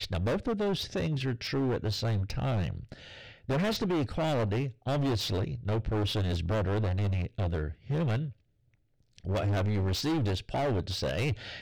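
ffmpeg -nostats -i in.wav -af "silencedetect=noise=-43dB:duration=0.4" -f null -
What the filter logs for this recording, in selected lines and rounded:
silence_start: 8.32
silence_end: 9.18 | silence_duration: 0.87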